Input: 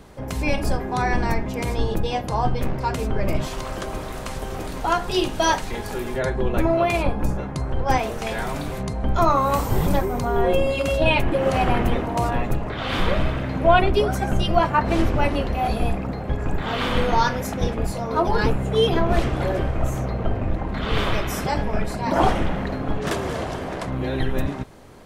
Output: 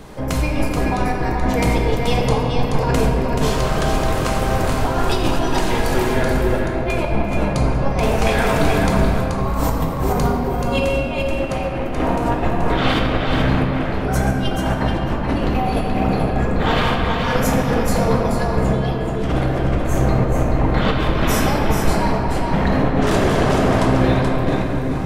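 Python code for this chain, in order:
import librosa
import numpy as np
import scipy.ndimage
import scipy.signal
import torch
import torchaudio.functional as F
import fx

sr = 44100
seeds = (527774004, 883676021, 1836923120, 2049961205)

p1 = fx.hum_notches(x, sr, base_hz=50, count=3)
p2 = fx.over_compress(p1, sr, threshold_db=-25.0, ratio=-0.5)
p3 = p2 + fx.echo_single(p2, sr, ms=430, db=-5.5, dry=0)
p4 = fx.room_shoebox(p3, sr, seeds[0], volume_m3=220.0, walls='hard', distance_m=0.52)
y = p4 * librosa.db_to_amplitude(2.5)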